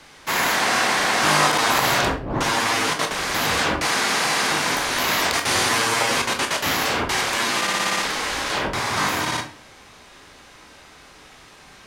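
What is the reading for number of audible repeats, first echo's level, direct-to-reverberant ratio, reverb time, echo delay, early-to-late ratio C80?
none, none, 3.5 dB, 0.45 s, none, 15.0 dB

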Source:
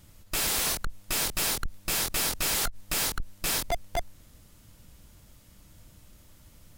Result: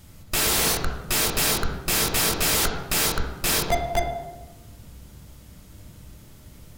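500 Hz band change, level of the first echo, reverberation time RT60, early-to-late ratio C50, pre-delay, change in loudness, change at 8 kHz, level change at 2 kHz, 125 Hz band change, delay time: +9.5 dB, none, 1.2 s, 4.5 dB, 3 ms, +6.0 dB, +5.0 dB, +6.5 dB, +10.0 dB, none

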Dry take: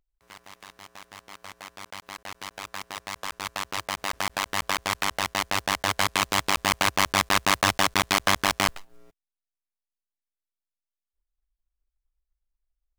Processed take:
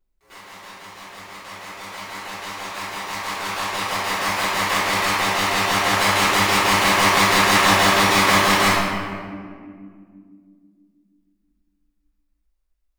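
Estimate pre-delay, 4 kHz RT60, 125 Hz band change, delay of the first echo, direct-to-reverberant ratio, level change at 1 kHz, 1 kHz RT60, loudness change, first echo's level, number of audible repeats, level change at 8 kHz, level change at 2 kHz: 3 ms, 1.1 s, +8.5 dB, none, -15.0 dB, +8.0 dB, 1.8 s, +7.5 dB, none, none, +5.5 dB, +8.0 dB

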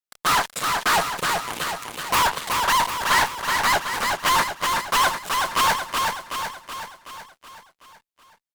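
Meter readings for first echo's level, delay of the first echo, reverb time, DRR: -4.0 dB, 0.375 s, none, none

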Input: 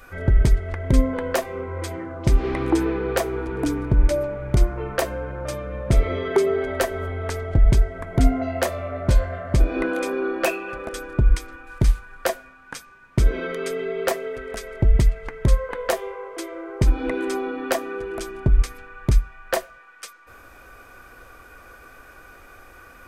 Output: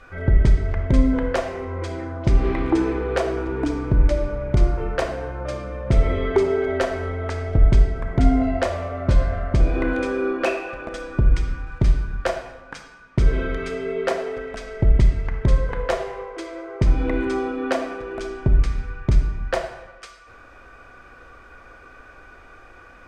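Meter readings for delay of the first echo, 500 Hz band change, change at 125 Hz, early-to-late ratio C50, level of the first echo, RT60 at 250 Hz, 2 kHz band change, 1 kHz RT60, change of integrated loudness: none, +0.5 dB, +1.0 dB, 7.5 dB, none, 1.2 s, 0.0 dB, 0.95 s, +1.0 dB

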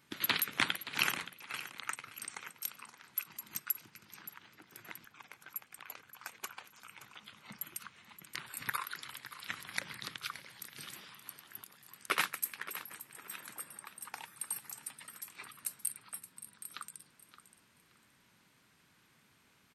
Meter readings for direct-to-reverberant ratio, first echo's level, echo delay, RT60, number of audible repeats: none, -14.0 dB, 0.573 s, none, 2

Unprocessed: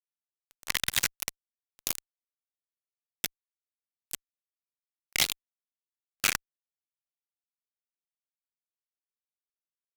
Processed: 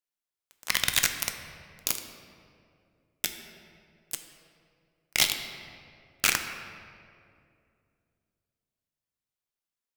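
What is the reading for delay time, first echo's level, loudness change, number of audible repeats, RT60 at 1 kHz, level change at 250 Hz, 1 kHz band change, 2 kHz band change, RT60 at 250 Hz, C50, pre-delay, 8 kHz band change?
none, none, +2.5 dB, none, 2.1 s, +3.0 dB, +3.5 dB, +3.5 dB, 2.8 s, 7.5 dB, 3 ms, +3.0 dB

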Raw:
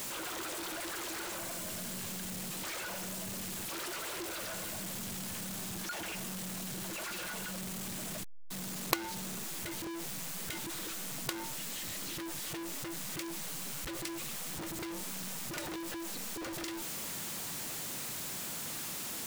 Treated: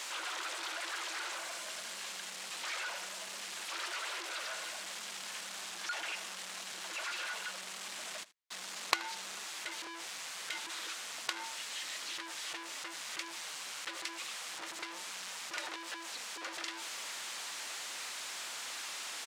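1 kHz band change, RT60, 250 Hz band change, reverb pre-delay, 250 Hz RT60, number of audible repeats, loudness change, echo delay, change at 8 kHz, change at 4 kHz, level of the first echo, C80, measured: +1.0 dB, none, -14.5 dB, none, none, 1, -1.5 dB, 79 ms, -3.0 dB, +2.5 dB, -19.5 dB, none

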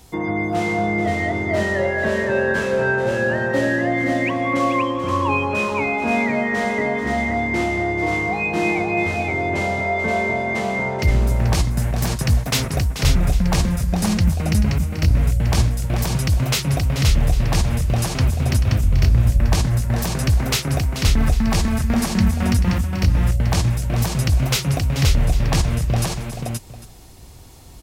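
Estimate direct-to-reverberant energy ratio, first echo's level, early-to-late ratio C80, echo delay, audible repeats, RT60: none, -10.5 dB, none, 0.435 s, 3, none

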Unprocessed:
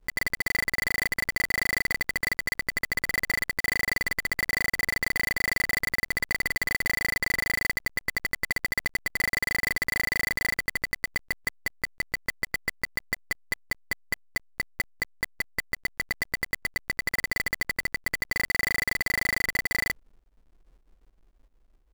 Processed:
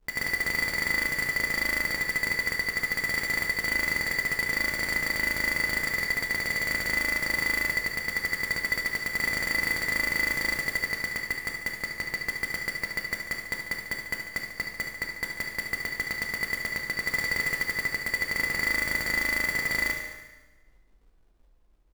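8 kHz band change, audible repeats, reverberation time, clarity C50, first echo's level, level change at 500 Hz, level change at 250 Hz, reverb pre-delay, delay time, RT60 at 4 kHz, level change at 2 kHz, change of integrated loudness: 0.0 dB, 2, 1.2 s, 2.5 dB, -9.5 dB, +1.0 dB, +0.5 dB, 11 ms, 72 ms, 1.1 s, +1.0 dB, +1.0 dB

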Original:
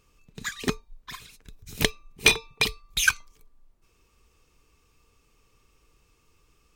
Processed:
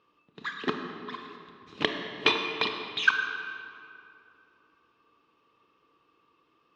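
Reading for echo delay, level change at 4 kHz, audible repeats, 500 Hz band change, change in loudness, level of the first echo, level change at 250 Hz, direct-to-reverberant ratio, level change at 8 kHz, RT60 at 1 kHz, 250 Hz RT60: none, -3.5 dB, none, -0.5 dB, -4.5 dB, none, -1.0 dB, 4.0 dB, -22.0 dB, 2.6 s, 2.9 s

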